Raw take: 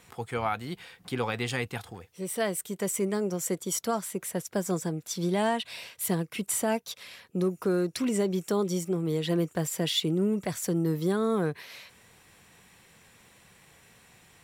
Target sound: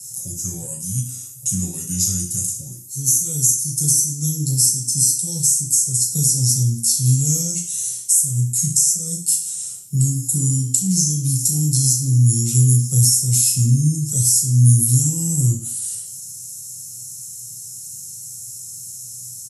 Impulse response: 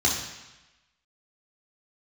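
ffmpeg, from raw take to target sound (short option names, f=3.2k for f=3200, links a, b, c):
-filter_complex "[0:a]acrossover=split=840[a][b];[b]aexciter=amount=5.1:drive=2.5:freq=8.8k[c];[a][c]amix=inputs=2:normalize=0,acrossover=split=400|3000[d][e][f];[e]acompressor=threshold=-45dB:ratio=2[g];[d][g][f]amix=inputs=3:normalize=0,asplit=2[h][i];[i]asoftclip=type=hard:threshold=-18dB,volume=-9dB[j];[h][j]amix=inputs=2:normalize=0,asuperstop=centerf=880:order=4:qfactor=6,asetrate=32667,aresample=44100,firequalizer=gain_entry='entry(130,0);entry(340,-13);entry(1700,-27);entry(5000,12);entry(7700,14);entry(14000,11)':delay=0.05:min_phase=1,acompressor=threshold=-18dB:ratio=16[k];[1:a]atrim=start_sample=2205,asetrate=79380,aresample=44100[l];[k][l]afir=irnorm=-1:irlink=0,volume=-4dB"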